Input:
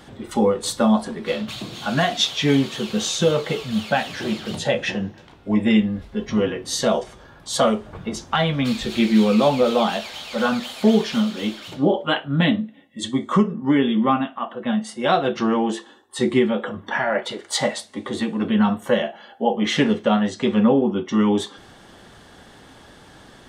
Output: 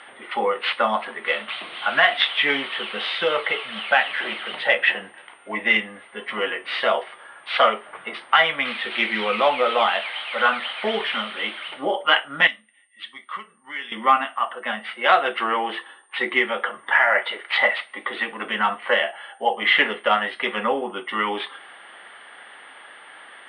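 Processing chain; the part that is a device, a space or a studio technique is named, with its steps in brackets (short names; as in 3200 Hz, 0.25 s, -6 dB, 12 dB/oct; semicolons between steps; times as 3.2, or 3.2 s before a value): toy sound module (decimation joined by straight lines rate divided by 4×; pulse-width modulation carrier 8900 Hz; speaker cabinet 770–3700 Hz, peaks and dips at 1300 Hz +4 dB, 2000 Hz +9 dB, 3000 Hz +6 dB); 12.47–13.92 passive tone stack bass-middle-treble 5-5-5; gain +4 dB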